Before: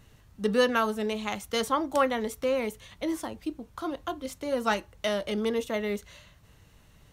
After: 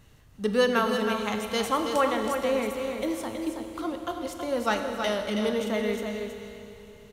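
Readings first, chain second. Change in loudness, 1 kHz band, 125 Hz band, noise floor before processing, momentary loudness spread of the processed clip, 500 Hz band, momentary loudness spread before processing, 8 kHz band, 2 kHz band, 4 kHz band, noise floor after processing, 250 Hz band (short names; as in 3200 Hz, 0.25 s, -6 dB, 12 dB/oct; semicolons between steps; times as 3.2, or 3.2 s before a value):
+1.5 dB, +2.0 dB, +2.5 dB, -59 dBFS, 10 LU, +2.0 dB, 11 LU, +2.0 dB, +2.0 dB, +2.0 dB, -54 dBFS, +2.0 dB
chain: on a send: echo 0.323 s -6.5 dB; on the sum: Schroeder reverb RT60 3.3 s, combs from 26 ms, DRR 6 dB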